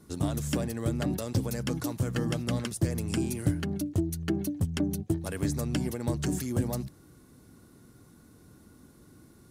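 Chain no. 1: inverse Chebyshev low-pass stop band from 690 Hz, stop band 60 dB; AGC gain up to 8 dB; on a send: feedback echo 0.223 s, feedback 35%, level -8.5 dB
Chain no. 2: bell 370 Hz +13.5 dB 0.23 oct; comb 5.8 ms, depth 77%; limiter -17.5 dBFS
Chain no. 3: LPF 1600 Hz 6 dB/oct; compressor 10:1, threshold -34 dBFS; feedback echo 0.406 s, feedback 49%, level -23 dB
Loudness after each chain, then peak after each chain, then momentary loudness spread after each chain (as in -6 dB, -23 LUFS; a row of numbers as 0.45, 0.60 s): -26.0, -28.0, -39.5 LUFS; -7.5, -17.5, -23.5 dBFS; 5, 3, 18 LU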